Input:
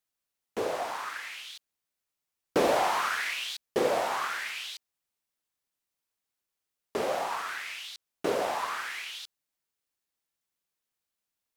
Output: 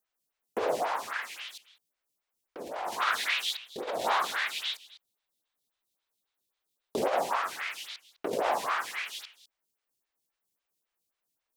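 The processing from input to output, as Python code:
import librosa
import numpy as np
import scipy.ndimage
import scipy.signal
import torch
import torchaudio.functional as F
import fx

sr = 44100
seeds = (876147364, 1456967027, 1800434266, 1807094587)

y = fx.over_compress(x, sr, threshold_db=-30.0, ratio=-0.5)
y = fx.peak_eq(y, sr, hz=3700.0, db=8.0, octaves=0.45, at=(3.0, 6.98))
y = y + 10.0 ** (-17.5 / 20.0) * np.pad(y, (int(204 * sr / 1000.0), 0))[:len(y)]
y = fx.stagger_phaser(y, sr, hz=3.7)
y = y * 10.0 ** (3.5 / 20.0)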